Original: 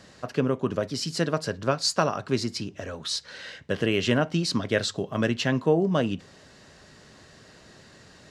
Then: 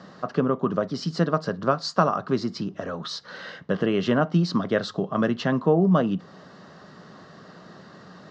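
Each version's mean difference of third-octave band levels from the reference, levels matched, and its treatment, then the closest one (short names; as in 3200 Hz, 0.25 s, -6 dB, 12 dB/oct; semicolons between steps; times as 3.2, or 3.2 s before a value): 5.0 dB: speaker cabinet 150–5800 Hz, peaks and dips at 180 Hz +9 dB, 720 Hz +3 dB, 1200 Hz +9 dB, 2400 Hz -8 dB; in parallel at -1.5 dB: compressor, threshold -34 dBFS, peak gain reduction 18.5 dB; on the sum: high shelf 2300 Hz -8 dB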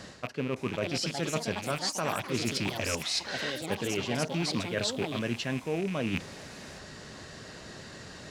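10.0 dB: rattling part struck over -39 dBFS, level -23 dBFS; reverse; compressor 10:1, threshold -34 dBFS, peak gain reduction 18.5 dB; reverse; echoes that change speed 0.562 s, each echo +5 st, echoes 3, each echo -6 dB; gain +6 dB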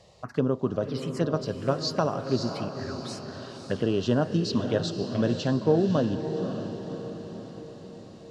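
7.0 dB: high shelf 4700 Hz -10 dB; envelope phaser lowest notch 240 Hz, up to 2200 Hz, full sweep at -23.5 dBFS; on a send: diffused feedback echo 0.551 s, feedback 55%, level -8 dB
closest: first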